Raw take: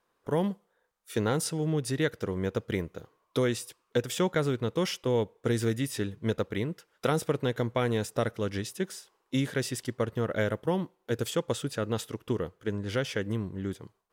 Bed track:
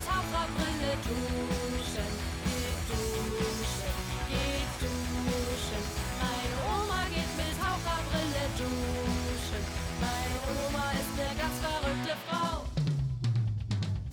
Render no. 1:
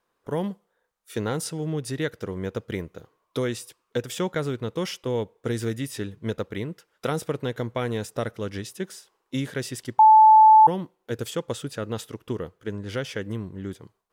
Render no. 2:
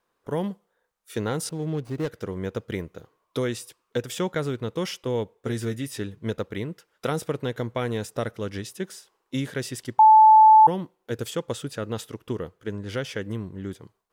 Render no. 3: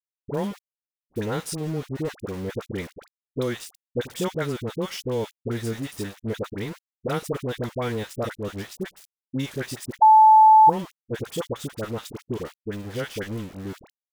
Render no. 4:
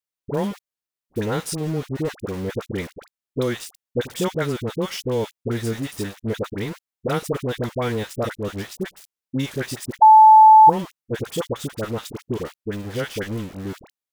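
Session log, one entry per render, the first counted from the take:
0:09.99–0:10.67: beep over 871 Hz −9 dBFS
0:01.49–0:02.10: running median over 25 samples; 0:05.35–0:05.92: notch comb filter 160 Hz
centre clipping without the shift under −36 dBFS; all-pass dispersion highs, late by 62 ms, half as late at 970 Hz
level +3.5 dB

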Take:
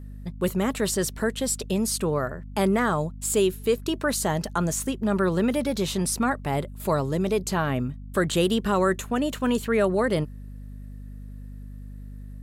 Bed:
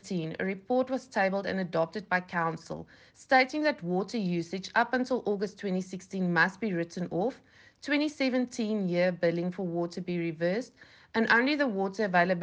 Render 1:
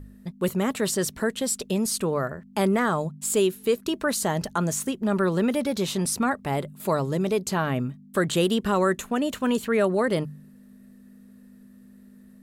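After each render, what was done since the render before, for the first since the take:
hum removal 50 Hz, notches 3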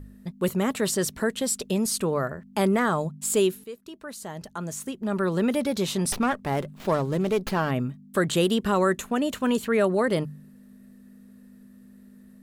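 0:03.64–0:05.51: fade in quadratic, from −16 dB
0:06.12–0:07.71: windowed peak hold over 5 samples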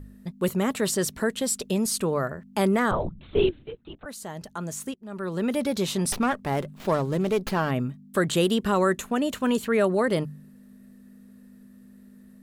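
0:02.91–0:04.06: linear-prediction vocoder at 8 kHz whisper
0:04.94–0:05.65: fade in, from −21.5 dB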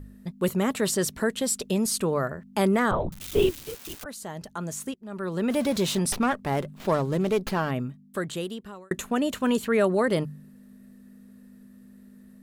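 0:03.12–0:04.04: spike at every zero crossing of −26.5 dBFS
0:05.50–0:05.99: converter with a step at zero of −34 dBFS
0:07.37–0:08.91: fade out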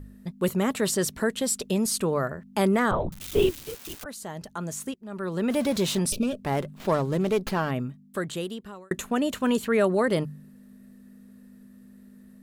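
0:06.10–0:06.42: gain on a spectral selection 670–2,300 Hz −23 dB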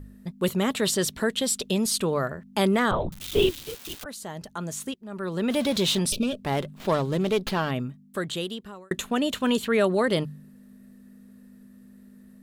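dynamic equaliser 3,500 Hz, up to +8 dB, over −51 dBFS, Q 1.7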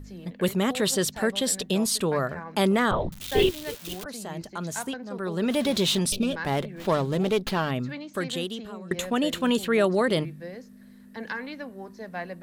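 mix in bed −10.5 dB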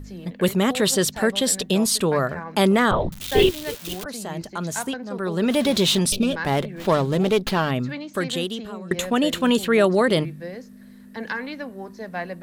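level +4.5 dB

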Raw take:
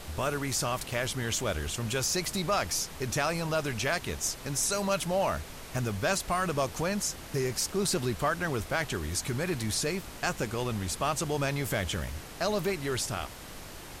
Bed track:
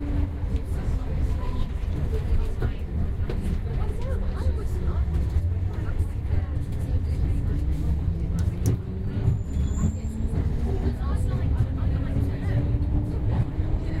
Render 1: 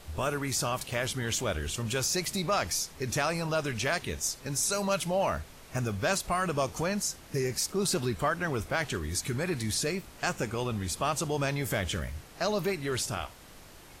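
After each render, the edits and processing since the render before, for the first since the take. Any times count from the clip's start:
noise reduction from a noise print 7 dB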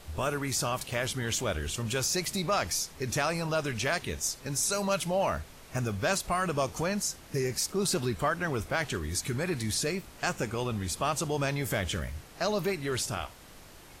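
no processing that can be heard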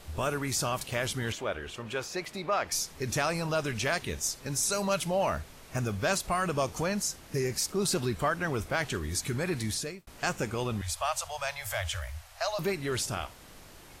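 0:01.32–0:02.72: bass and treble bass −11 dB, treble −15 dB
0:09.65–0:10.07: fade out
0:10.81–0:12.59: elliptic band-stop filter 100–620 Hz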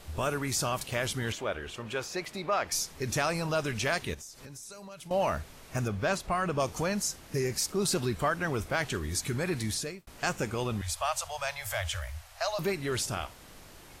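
0:04.14–0:05.11: downward compressor 12 to 1, threshold −42 dBFS
0:05.88–0:06.60: high-shelf EQ 4,600 Hz −10.5 dB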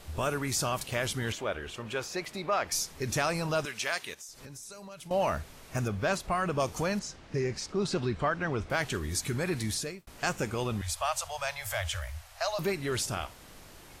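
0:03.65–0:04.29: high-pass filter 1,000 Hz 6 dB per octave
0:06.99–0:08.70: high-frequency loss of the air 120 metres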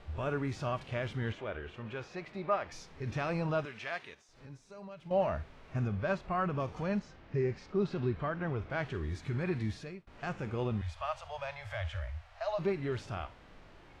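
harmonic and percussive parts rebalanced percussive −10 dB
low-pass filter 2,700 Hz 12 dB per octave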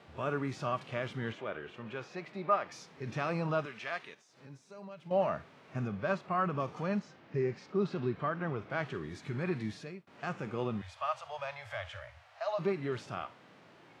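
high-pass filter 130 Hz 24 dB per octave
dynamic equaliser 1,200 Hz, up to +5 dB, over −55 dBFS, Q 6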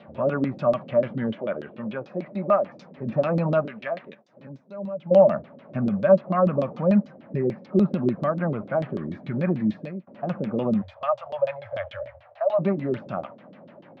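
auto-filter low-pass saw down 6.8 Hz 290–4,100 Hz
hollow resonant body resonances 210/560 Hz, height 15 dB, ringing for 30 ms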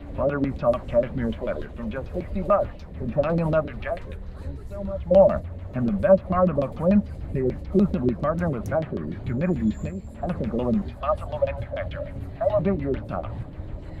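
mix in bed track −10 dB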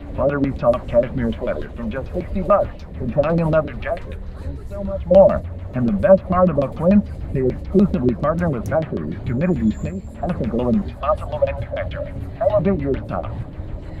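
level +5 dB
brickwall limiter −1 dBFS, peak gain reduction 1 dB

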